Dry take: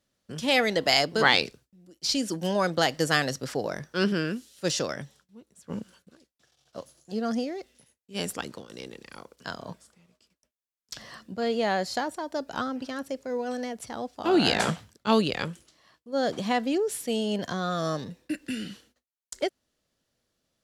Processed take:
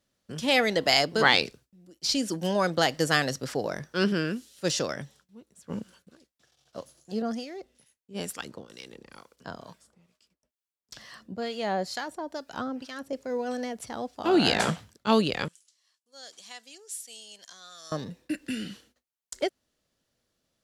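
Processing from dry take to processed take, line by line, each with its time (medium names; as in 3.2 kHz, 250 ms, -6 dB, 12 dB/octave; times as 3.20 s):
7.22–13.13 s: harmonic tremolo 2.2 Hz, crossover 1.1 kHz
15.48–17.92 s: band-pass filter 7.7 kHz, Q 1.3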